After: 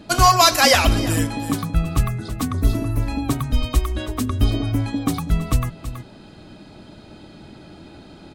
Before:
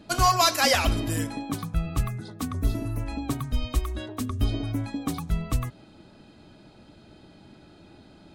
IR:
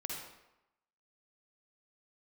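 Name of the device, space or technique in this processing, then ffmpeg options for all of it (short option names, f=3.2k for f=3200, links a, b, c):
ducked delay: -filter_complex "[0:a]asplit=3[a][b][c];[b]adelay=326,volume=-3dB[d];[c]apad=whole_len=382444[e];[d][e]sidechaincompress=threshold=-36dB:ratio=6:attack=16:release=568[f];[a][f]amix=inputs=2:normalize=0,volume=7dB"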